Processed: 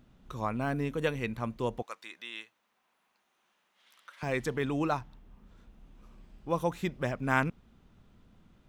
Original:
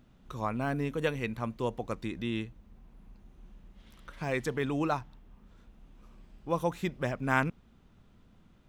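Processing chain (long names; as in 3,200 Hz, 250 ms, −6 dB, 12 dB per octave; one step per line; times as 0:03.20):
0:01.82–0:04.23: high-pass filter 1,000 Hz 12 dB per octave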